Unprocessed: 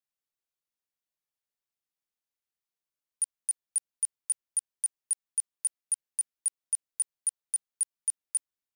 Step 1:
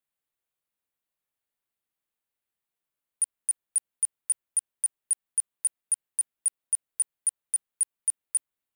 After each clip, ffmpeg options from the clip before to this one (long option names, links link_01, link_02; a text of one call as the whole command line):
ffmpeg -i in.wav -af "equalizer=frequency=5500:width_type=o:width=0.72:gain=-10,volume=4.5dB" out.wav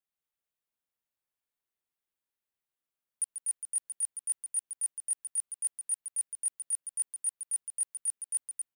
ffmpeg -i in.wav -af "aecho=1:1:139.9|244.9:0.355|0.562,volume=-6dB" out.wav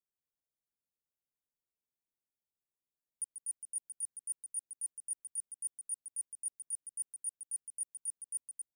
ffmpeg -i in.wav -af "firequalizer=gain_entry='entry(270,0);entry(1400,-16);entry(4300,-21);entry(6900,-5)':delay=0.05:min_phase=1,volume=-2dB" out.wav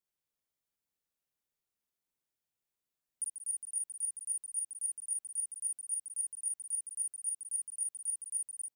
ffmpeg -i in.wav -af "aecho=1:1:43|56|311:0.447|0.531|0.282,volume=1.5dB" out.wav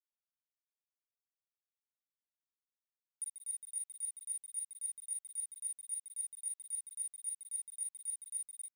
ffmpeg -i in.wav -af "aeval=exprs='sgn(val(0))*max(abs(val(0))-0.00211,0)':channel_layout=same,volume=-3.5dB" out.wav